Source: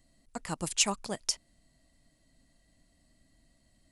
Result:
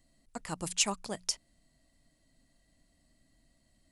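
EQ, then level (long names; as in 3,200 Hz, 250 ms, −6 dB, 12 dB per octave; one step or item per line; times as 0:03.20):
mains-hum notches 60/120/180 Hz
−2.0 dB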